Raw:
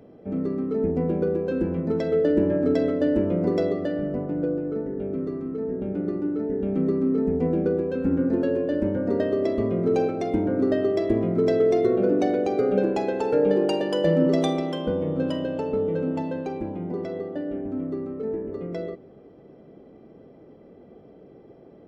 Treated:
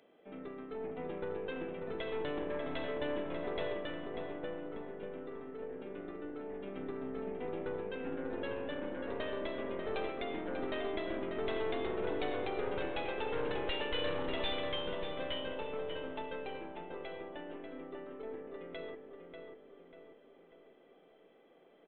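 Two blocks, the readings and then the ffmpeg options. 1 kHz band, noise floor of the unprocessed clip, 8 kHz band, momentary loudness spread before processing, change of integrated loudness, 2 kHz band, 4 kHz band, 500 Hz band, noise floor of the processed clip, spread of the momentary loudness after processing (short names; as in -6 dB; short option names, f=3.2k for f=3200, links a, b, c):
-8.0 dB, -50 dBFS, n/a, 10 LU, -15.0 dB, -2.5 dB, -1.0 dB, -14.5 dB, -63 dBFS, 10 LU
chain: -filter_complex "[0:a]highpass=150,aderivative,aeval=exprs='0.0631*(cos(1*acos(clip(val(0)/0.0631,-1,1)))-cos(1*PI/2))+0.0251*(cos(4*acos(clip(val(0)/0.0631,-1,1)))-cos(4*PI/2))+0.00282*(cos(8*acos(clip(val(0)/0.0631,-1,1)))-cos(8*PI/2))':c=same,aresample=8000,asoftclip=type=tanh:threshold=-37dB,aresample=44100,asplit=2[a][b];[b]adelay=591,lowpass=f=2.4k:p=1,volume=-5dB,asplit=2[c][d];[d]adelay=591,lowpass=f=2.4k:p=1,volume=0.49,asplit=2[e][f];[f]adelay=591,lowpass=f=2.4k:p=1,volume=0.49,asplit=2[g][h];[h]adelay=591,lowpass=f=2.4k:p=1,volume=0.49,asplit=2[i][j];[j]adelay=591,lowpass=f=2.4k:p=1,volume=0.49,asplit=2[k][l];[l]adelay=591,lowpass=f=2.4k:p=1,volume=0.49[m];[a][c][e][g][i][k][m]amix=inputs=7:normalize=0,volume=8.5dB"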